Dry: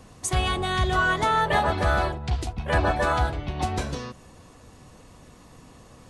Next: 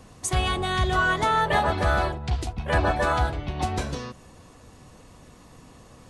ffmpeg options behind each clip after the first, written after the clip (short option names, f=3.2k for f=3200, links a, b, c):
-af anull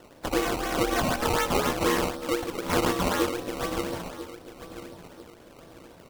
-filter_complex "[0:a]aeval=exprs='val(0)*sin(2*PI*410*n/s)':c=same,asplit=2[a][b];[b]adelay=990,lowpass=f=1k:p=1,volume=-12dB,asplit=2[c][d];[d]adelay=990,lowpass=f=1k:p=1,volume=0.41,asplit=2[e][f];[f]adelay=990,lowpass=f=1k:p=1,volume=0.41,asplit=2[g][h];[h]adelay=990,lowpass=f=1k:p=1,volume=0.41[i];[a][c][e][g][i]amix=inputs=5:normalize=0,acrusher=samples=18:mix=1:aa=0.000001:lfo=1:lforange=18:lforate=4"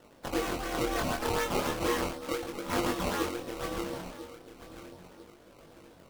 -af "flanger=delay=20:depth=7.6:speed=0.36,volume=-2.5dB"